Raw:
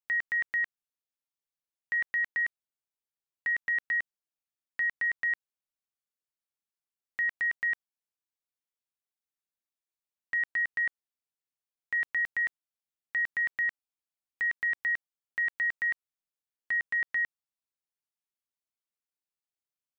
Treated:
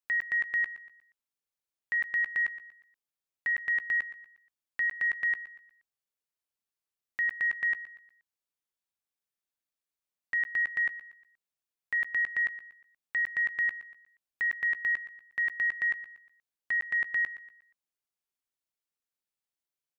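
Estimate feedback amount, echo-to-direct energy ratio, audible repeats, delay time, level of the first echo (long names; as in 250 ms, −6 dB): 39%, −14.5 dB, 3, 119 ms, −15.0 dB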